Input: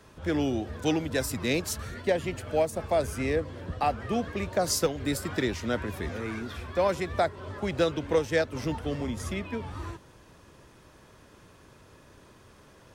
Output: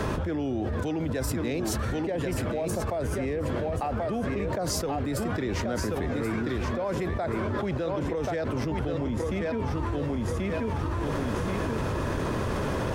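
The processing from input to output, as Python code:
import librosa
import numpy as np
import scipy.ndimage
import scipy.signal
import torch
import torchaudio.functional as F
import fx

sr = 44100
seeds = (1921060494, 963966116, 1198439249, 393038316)

y = fx.high_shelf(x, sr, hz=2200.0, db=-11.0)
y = fx.echo_feedback(y, sr, ms=1083, feedback_pct=16, wet_db=-8.0)
y = fx.env_flatten(y, sr, amount_pct=100)
y = F.gain(torch.from_numpy(y), -8.5).numpy()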